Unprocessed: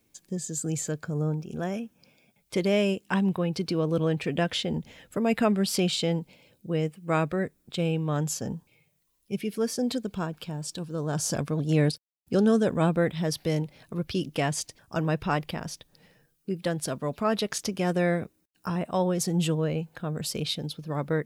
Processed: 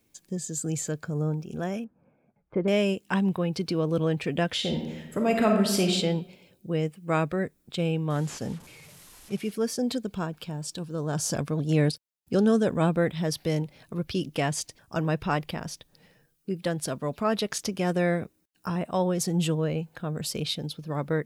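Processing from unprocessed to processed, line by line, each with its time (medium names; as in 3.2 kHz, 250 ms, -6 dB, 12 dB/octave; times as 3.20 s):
1.84–2.68 s: low-pass 1.5 kHz 24 dB/octave
4.56–5.94 s: reverb throw, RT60 0.95 s, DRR 2 dB
8.10–9.52 s: one-bit delta coder 64 kbps, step -43 dBFS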